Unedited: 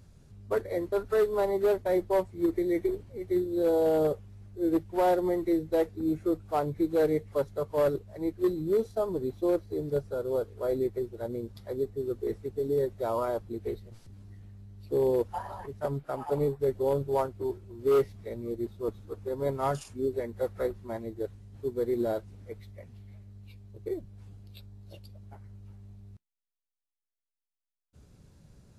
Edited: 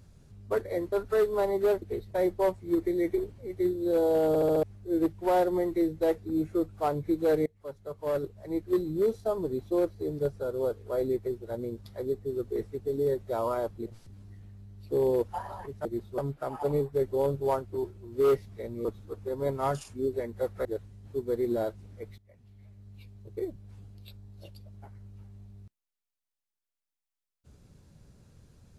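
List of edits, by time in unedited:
3.99 s: stutter in place 0.07 s, 5 plays
7.17–8.29 s: fade in, from -23 dB
13.57–13.86 s: move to 1.82 s
18.52–18.85 s: move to 15.85 s
20.65–21.14 s: delete
22.67–23.47 s: fade in, from -19.5 dB

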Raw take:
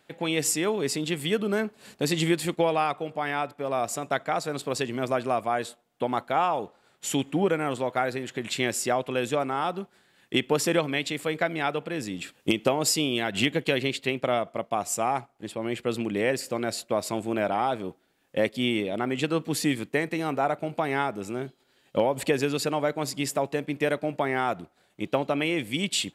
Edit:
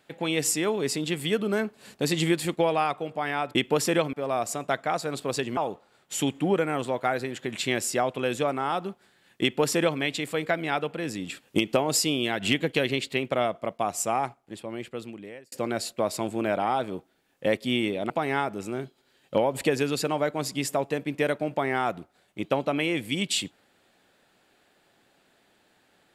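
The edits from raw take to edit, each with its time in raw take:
4.99–6.49 s: delete
10.34–10.92 s: copy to 3.55 s
15.05–16.44 s: fade out
19.02–20.72 s: delete

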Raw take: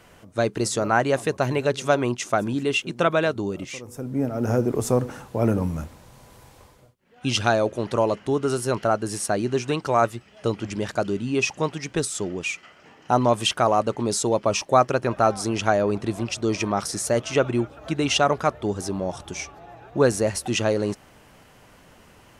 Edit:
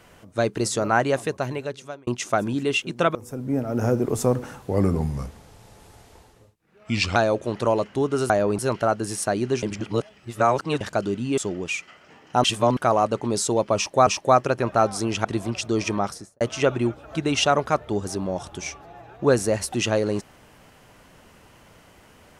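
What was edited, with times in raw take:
1.05–2.07 s: fade out
3.15–3.81 s: delete
5.34–7.47 s: speed 86%
9.65–10.83 s: reverse
11.40–12.13 s: delete
13.19–13.52 s: reverse
14.51–14.82 s: loop, 2 plays
15.69–15.98 s: move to 8.61 s
16.69–17.14 s: studio fade out

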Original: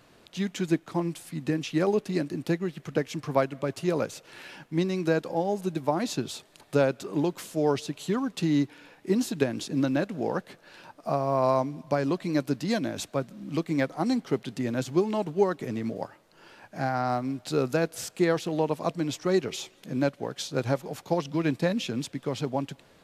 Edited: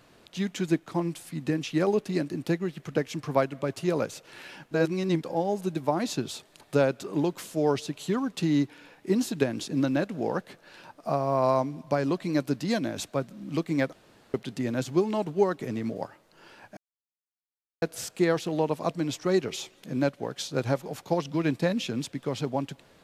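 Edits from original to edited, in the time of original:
4.71–5.22 s: reverse
13.93–14.34 s: room tone
16.77–17.82 s: mute

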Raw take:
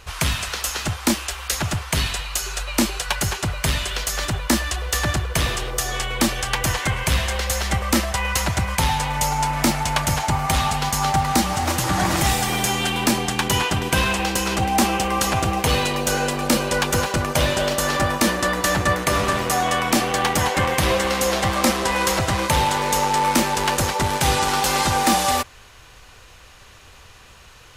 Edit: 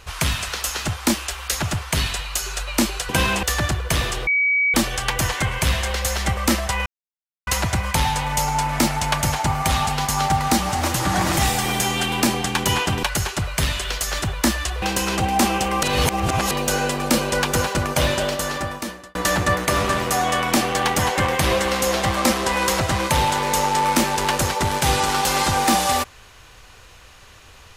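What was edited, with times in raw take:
3.09–4.88 s: swap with 13.87–14.21 s
5.72–6.19 s: bleep 2.27 kHz -15.5 dBFS
8.31 s: insert silence 0.61 s
15.22–15.90 s: reverse
17.50–18.54 s: fade out linear

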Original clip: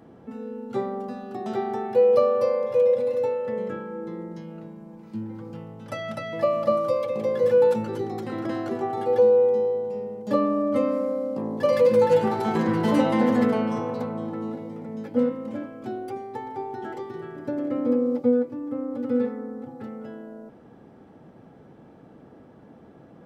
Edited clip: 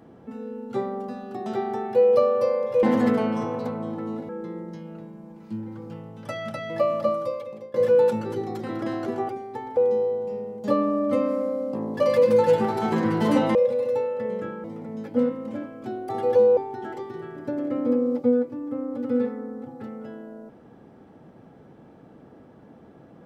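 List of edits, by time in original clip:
2.83–3.92 s: swap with 13.18–14.64 s
6.55–7.37 s: fade out, to -24 dB
8.92–9.40 s: swap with 16.09–16.57 s

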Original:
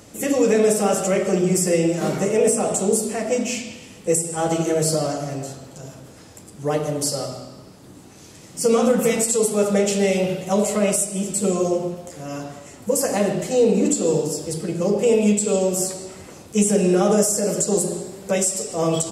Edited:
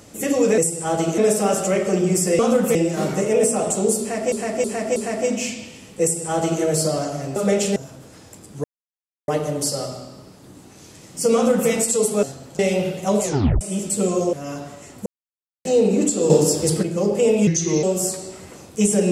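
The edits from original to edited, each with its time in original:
3.04–3.36 s: loop, 4 plays
4.10–4.70 s: copy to 0.58 s
5.44–5.80 s: swap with 9.63–10.03 s
6.68 s: insert silence 0.64 s
8.74–9.10 s: copy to 1.79 s
10.67 s: tape stop 0.38 s
11.77–12.17 s: delete
12.90–13.49 s: mute
14.14–14.67 s: gain +7.5 dB
15.31–15.60 s: speed 80%

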